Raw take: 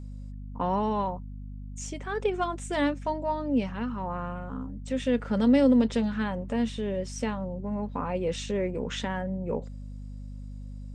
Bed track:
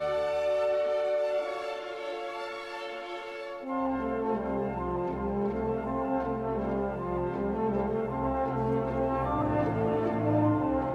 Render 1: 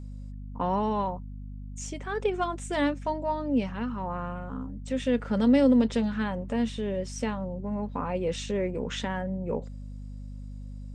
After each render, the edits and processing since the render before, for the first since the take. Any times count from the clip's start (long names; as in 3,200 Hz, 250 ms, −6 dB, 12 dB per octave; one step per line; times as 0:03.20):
no processing that can be heard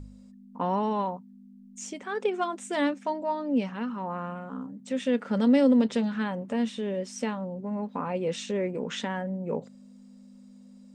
hum removal 50 Hz, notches 3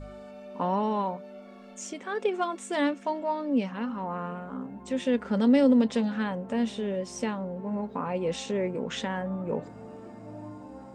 mix in bed track −17 dB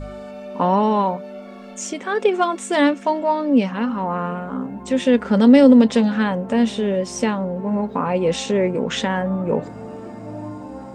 level +10 dB